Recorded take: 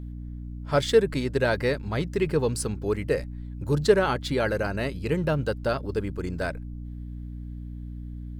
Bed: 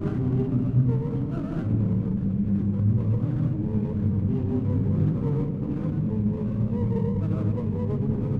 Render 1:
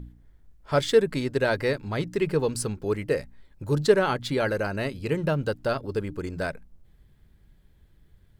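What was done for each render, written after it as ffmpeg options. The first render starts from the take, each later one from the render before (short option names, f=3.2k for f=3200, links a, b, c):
-af "bandreject=f=60:t=h:w=4,bandreject=f=120:t=h:w=4,bandreject=f=180:t=h:w=4,bandreject=f=240:t=h:w=4,bandreject=f=300:t=h:w=4"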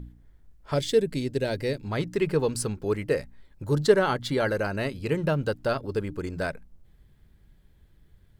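-filter_complex "[0:a]asettb=1/sr,asplit=3[a][b][c];[a]atrim=end=0.744[d];[b]atrim=start=0.74:end=1.85,asetpts=PTS-STARTPTS,afade=t=in:d=0.004:c=qsin,afade=t=out:st=1.106:d=0.004:c=qsin,equalizer=f=1.2k:w=1:g=-14[e];[c]atrim=start=1.846[f];[d][e]acrossfade=d=0.004:c1=hsin:c2=qsin[g];[g][f]acrossfade=d=0.004:c1=qsin:c2=hsin,asettb=1/sr,asplit=3[h][i][j];[h]atrim=end=3.654[k];[i]atrim=start=3.65:end=4.56,asetpts=PTS-STARTPTS,afade=t=in:d=0.004:c=qsin,afade=t=out:st=0.906:d=0.004:c=qsin,bandreject=f=2.5k:w=10[l];[j]atrim=start=4.556[m];[k][l]acrossfade=d=0.004:c1=hsin:c2=qsin[n];[n][m]acrossfade=d=0.004:c1=qsin:c2=hsin"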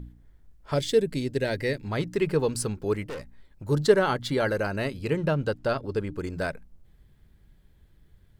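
-filter_complex "[0:a]asettb=1/sr,asplit=3[a][b][c];[a]atrim=end=1.364[d];[b]atrim=start=1.36:end=1.91,asetpts=PTS-STARTPTS,afade=t=in:d=0.004:c=qsin,afade=t=out:st=0.546:d=0.004:c=qsin,equalizer=f=1.9k:w=3.4:g=8[e];[c]atrim=start=1.906[f];[d][e]acrossfade=d=0.004:c1=hsin:c2=qsin[g];[g][f]acrossfade=d=0.004:c1=qsin:c2=hsin,asettb=1/sr,asplit=3[h][i][j];[h]atrim=end=3.044[k];[i]atrim=start=3.04:end=3.69,asetpts=PTS-STARTPTS,afade=t=in:d=0.004:c=qsin,afade=t=out:st=0.646:d=0.004:c=qsin,aeval=exprs='(tanh(44.7*val(0)+0.4)-tanh(0.4))/44.7':c=same[l];[j]atrim=start=3.686[m];[k][l]acrossfade=d=0.004:c1=hsin:c2=qsin[n];[n][m]acrossfade=d=0.004:c1=qsin:c2=hsin,asettb=1/sr,asplit=3[o][p][q];[o]atrim=end=5.104[r];[p]atrim=start=5.1:end=6.17,asetpts=PTS-STARTPTS,afade=t=in:d=0.004:c=qsin,afade=t=out:st=1.066:d=0.004:c=qsin,highshelf=f=10k:g=-9[s];[q]atrim=start=6.166[t];[r][s]acrossfade=d=0.004:c1=hsin:c2=qsin[u];[u][t]acrossfade=d=0.004:c1=qsin:c2=hsin"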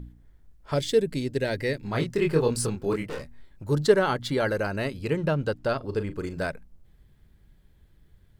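-filter_complex "[0:a]asettb=1/sr,asplit=3[a][b][c];[a]atrim=end=1.804[d];[b]atrim=start=1.8:end=3.64,asetpts=PTS-STARTPTS,afade=t=in:d=0.004:c=qsin,afade=t=out:st=1.836:d=0.004:c=qsin,asplit=2[e][f];[f]adelay=25,volume=-3dB[g];[e][g]amix=inputs=2:normalize=0,atrim=end_sample=81144[h];[c]atrim=start=3.636[i];[d][h]acrossfade=d=0.004:c1=hsin:c2=qsin[j];[j][i]acrossfade=d=0.004:c1=qsin:c2=hsin,asettb=1/sr,asplit=3[k][l][m];[k]atrim=end=5.774[n];[l]atrim=start=5.77:end=6.44,asetpts=PTS-STARTPTS,afade=t=in:d=0.004:c=qsin,afade=t=out:st=0.666:d=0.004:c=qsin,asplit=2[o][p];[p]adelay=39,volume=-11dB[q];[o][q]amix=inputs=2:normalize=0,atrim=end_sample=29547[r];[m]atrim=start=6.436[s];[n][r]acrossfade=d=0.004:c1=hsin:c2=qsin[t];[t][s]acrossfade=d=0.004:c1=qsin:c2=hsin"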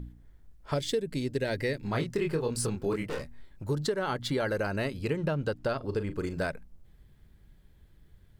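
-af "alimiter=limit=-14dB:level=0:latency=1:release=454,acompressor=threshold=-26dB:ratio=4"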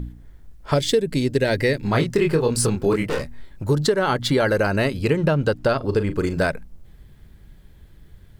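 -af "volume=10.5dB"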